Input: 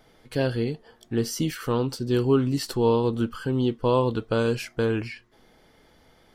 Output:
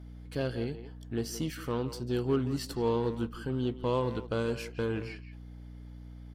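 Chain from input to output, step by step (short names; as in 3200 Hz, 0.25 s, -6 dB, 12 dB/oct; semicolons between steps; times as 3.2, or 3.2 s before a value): hum 60 Hz, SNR 12 dB; added harmonics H 8 -30 dB, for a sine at -9.5 dBFS; speakerphone echo 0.17 s, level -11 dB; gain -8 dB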